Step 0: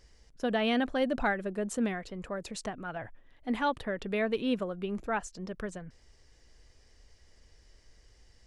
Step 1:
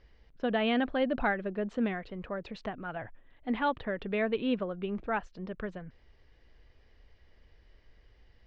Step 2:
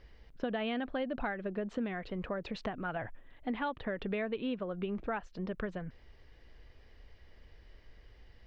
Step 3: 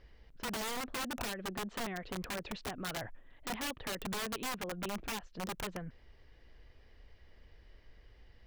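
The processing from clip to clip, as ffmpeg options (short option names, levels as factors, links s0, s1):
-af "lowpass=f=3600:w=0.5412,lowpass=f=3600:w=1.3066"
-af "acompressor=threshold=0.0158:ratio=6,volume=1.5"
-af "aeval=exprs='(mod(33.5*val(0)+1,2)-1)/33.5':c=same,volume=0.794"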